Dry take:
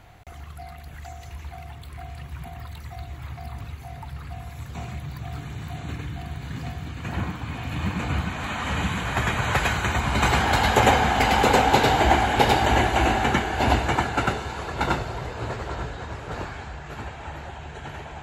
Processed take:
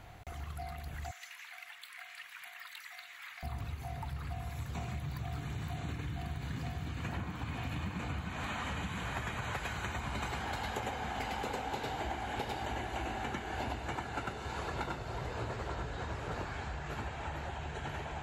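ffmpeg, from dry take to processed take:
ffmpeg -i in.wav -filter_complex "[0:a]asettb=1/sr,asplit=3[link_01][link_02][link_03];[link_01]atrim=end=1.114[link_04];[link_02]atrim=start=1.11:end=3.43,asetpts=PTS-STARTPTS,afade=type=in:duration=0.004:curve=qsin,afade=type=out:start_time=2.316:duration=0.004:curve=qsin,highpass=frequency=1800:width_type=q:width=1.7[link_05];[link_03]atrim=start=3.426[link_06];[link_04][link_05]acrossfade=duration=0.004:curve1=hsin:curve2=qsin[link_07];[link_07][link_06]acrossfade=duration=0.004:curve1=qsin:curve2=hsin,acompressor=threshold=-32dB:ratio=12,volume=-2.5dB" out.wav

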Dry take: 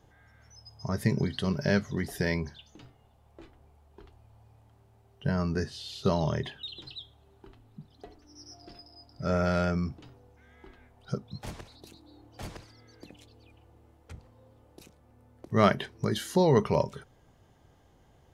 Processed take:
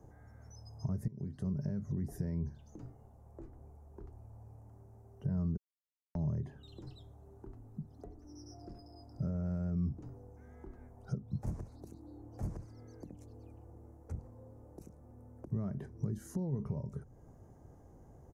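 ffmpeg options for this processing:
ffmpeg -i in.wav -filter_complex "[0:a]asplit=4[link_01][link_02][link_03][link_04];[link_01]atrim=end=1.08,asetpts=PTS-STARTPTS,afade=type=out:start_time=1.076:duration=0.004:curve=hsin:silence=0.1[link_05];[link_02]atrim=start=1.08:end=5.57,asetpts=PTS-STARTPTS,afade=type=in:duration=0.51:curve=qua:silence=0.1,afade=type=out:start_time=4.486:duration=0.004:curve=hsin[link_06];[link_03]atrim=start=5.57:end=6.15,asetpts=PTS-STARTPTS,volume=0[link_07];[link_04]atrim=start=6.15,asetpts=PTS-STARTPTS,afade=type=in:duration=0.004:curve=hsin[link_08];[link_05][link_06][link_07][link_08]concat=n=4:v=0:a=1,firequalizer=gain_entry='entry(320,0);entry(3300,-29);entry(6000,-8)':delay=0.05:min_phase=1,alimiter=level_in=4.5dB:limit=-24dB:level=0:latency=1:release=136,volume=-4.5dB,acrossover=split=220[link_09][link_10];[link_10]acompressor=threshold=-57dB:ratio=3[link_11];[link_09][link_11]amix=inputs=2:normalize=0,volume=5dB" out.wav

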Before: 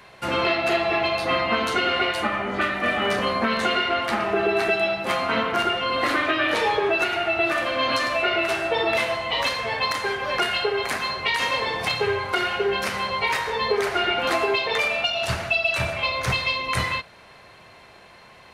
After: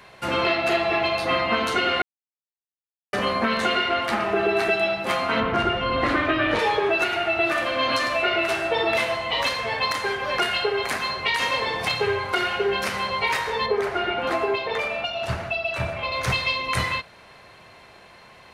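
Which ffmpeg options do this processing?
ffmpeg -i in.wav -filter_complex "[0:a]asettb=1/sr,asplit=3[link_01][link_02][link_03];[link_01]atrim=end=5.404[link_04];[link_02]atrim=start=5.4:end=6.59,asetpts=PTS-STARTPTS,afade=type=in:duration=0.004:curve=qsin,afade=type=out:start_time=1.186:duration=0.004:curve=qsin,aemphasis=mode=reproduction:type=bsi[link_05];[link_03]atrim=start=6.586[link_06];[link_04][link_05]acrossfade=duration=0.004:curve1=hsin:curve2=qsin[link_07];[link_07][link_06]acrossfade=duration=0.004:curve1=qsin:curve2=hsin,asettb=1/sr,asplit=3[link_08][link_09][link_10];[link_08]atrim=end=13.664[link_11];[link_09]atrim=start=13.66:end=16.12,asetpts=PTS-STARTPTS,afade=type=in:duration=0.004:curve=qsin,afade=type=out:start_time=2.456:duration=0.004:curve=qsin,highshelf=frequency=2400:gain=-10.5[link_12];[link_10]atrim=start=16.116[link_13];[link_11][link_12]acrossfade=duration=0.004:curve1=hsin:curve2=qsin[link_14];[link_14][link_13]acrossfade=duration=0.004:curve1=qsin:curve2=hsin,asplit=3[link_15][link_16][link_17];[link_15]atrim=end=2.02,asetpts=PTS-STARTPTS,afade=type=out:start_time=2.016:duration=0.004:curve=hsin[link_18];[link_16]atrim=start=2.02:end=3.13,asetpts=PTS-STARTPTS,volume=0[link_19];[link_17]atrim=start=3.13,asetpts=PTS-STARTPTS,afade=type=in:duration=0.004:curve=hsin[link_20];[link_18][link_19][link_20]concat=n=3:v=0:a=1" out.wav

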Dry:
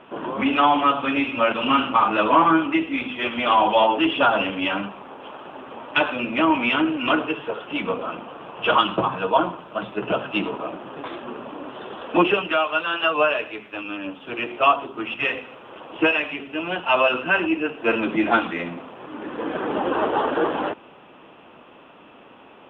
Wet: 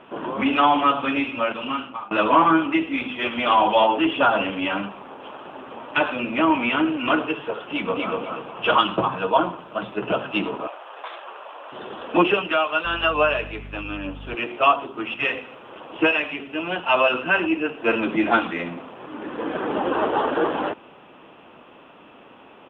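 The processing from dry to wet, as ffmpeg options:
ffmpeg -i in.wav -filter_complex "[0:a]asettb=1/sr,asplit=3[link_01][link_02][link_03];[link_01]atrim=end=3.884[link_04];[link_02]atrim=start=3.88:end=7.12,asetpts=PTS-STARTPTS,afade=type=in:duration=0.004:curve=qsin,afade=type=out:start_time=3.236:duration=0.004:curve=qsin,acrossover=split=3000[link_05][link_06];[link_06]acompressor=threshold=-38dB:ratio=4:attack=1:release=60[link_07];[link_05][link_07]amix=inputs=2:normalize=0[link_08];[link_03]atrim=start=7.116[link_09];[link_04][link_08]acrossfade=duration=0.004:curve1=hsin:curve2=qsin[link_10];[link_10][link_09]acrossfade=duration=0.004:curve1=qsin:curve2=hsin,asplit=2[link_11][link_12];[link_12]afade=type=in:start_time=7.71:duration=0.01,afade=type=out:start_time=8.17:duration=0.01,aecho=0:1:240|480|720|960:0.749894|0.187474|0.0468684|0.0117171[link_13];[link_11][link_13]amix=inputs=2:normalize=0,asettb=1/sr,asplit=3[link_14][link_15][link_16];[link_14]atrim=end=10.674[link_17];[link_15]atrim=start=10.67:end=11.72,asetpts=PTS-STARTPTS,afade=type=in:duration=0.004:curve=qsin,afade=type=out:start_time=1.046:duration=0.004:curve=qsin,highpass=frequency=590:width=0.5412,highpass=frequency=590:width=1.3066[link_18];[link_16]atrim=start=11.716[link_19];[link_17][link_18]acrossfade=duration=0.004:curve1=hsin:curve2=qsin[link_20];[link_20][link_19]acrossfade=duration=0.004:curve1=qsin:curve2=hsin,asettb=1/sr,asplit=3[link_21][link_22][link_23];[link_21]atrim=end=12.854[link_24];[link_22]atrim=start=12.85:end=14.35,asetpts=PTS-STARTPTS,afade=type=in:duration=0.004:curve=qsin,afade=type=out:start_time=1.496:duration=0.004:curve=qsin,aeval=exprs='val(0)+0.0158*(sin(2*PI*50*n/s)+sin(2*PI*2*50*n/s)/2+sin(2*PI*3*50*n/s)/3+sin(2*PI*4*50*n/s)/4+sin(2*PI*5*50*n/s)/5)':channel_layout=same[link_25];[link_23]atrim=start=14.346[link_26];[link_24][link_25]acrossfade=duration=0.004:curve1=hsin:curve2=qsin[link_27];[link_27][link_26]acrossfade=duration=0.004:curve1=qsin:curve2=hsin,asplit=2[link_28][link_29];[link_28]atrim=end=2.11,asetpts=PTS-STARTPTS,afade=type=out:start_time=1.04:duration=1.07:silence=0.0707946[link_30];[link_29]atrim=start=2.11,asetpts=PTS-STARTPTS,afade=type=in:duration=0.004:curve=hsin:silence=0.0707946[link_31];[link_30][link_31]concat=n=2:v=0:a=1" out.wav

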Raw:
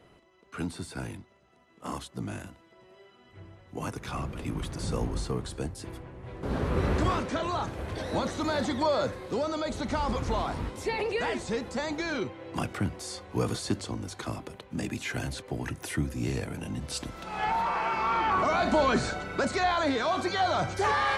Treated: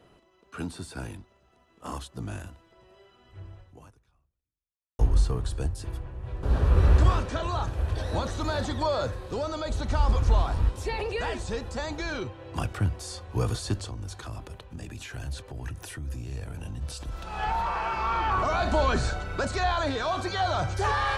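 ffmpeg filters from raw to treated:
ffmpeg -i in.wav -filter_complex "[0:a]asettb=1/sr,asplit=3[link_01][link_02][link_03];[link_01]atrim=end=13.894[link_04];[link_02]atrim=start=13.89:end=17.15,asetpts=PTS-STARTPTS,afade=type=in:duration=0.004:curve=qsin,afade=type=out:start_time=3.256:duration=0.004:curve=qsin,acompressor=threshold=-36dB:ratio=6:attack=3.2:release=140:knee=1:detection=peak[link_05];[link_03]atrim=start=17.146[link_06];[link_04][link_05]acrossfade=duration=0.004:curve1=hsin:curve2=qsin[link_07];[link_07][link_06]acrossfade=duration=0.004:curve1=qsin:curve2=hsin,asplit=2[link_08][link_09];[link_08]atrim=end=4.99,asetpts=PTS-STARTPTS,afade=type=out:start_time=3.6:duration=1.39:curve=exp[link_10];[link_09]atrim=start=4.99,asetpts=PTS-STARTPTS,afade=type=in:duration=0.004:curve=hsin[link_11];[link_10][link_11]concat=n=2:v=0:a=1,bandreject=frequency=2100:width=7.7,asubboost=boost=7.5:cutoff=75" out.wav

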